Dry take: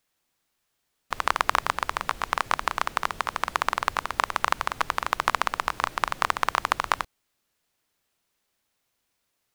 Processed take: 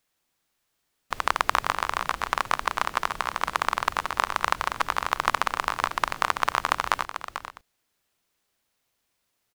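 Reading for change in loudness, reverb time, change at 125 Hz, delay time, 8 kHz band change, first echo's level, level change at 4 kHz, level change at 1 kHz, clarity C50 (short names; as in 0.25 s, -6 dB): +0.5 dB, none, +0.5 dB, 0.442 s, +0.5 dB, -10.0 dB, +0.5 dB, +0.5 dB, none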